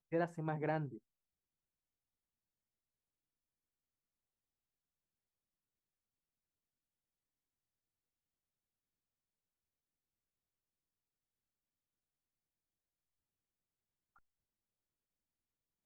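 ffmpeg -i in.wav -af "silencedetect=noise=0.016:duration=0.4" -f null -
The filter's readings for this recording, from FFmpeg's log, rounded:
silence_start: 0.86
silence_end: 15.86 | silence_duration: 15.00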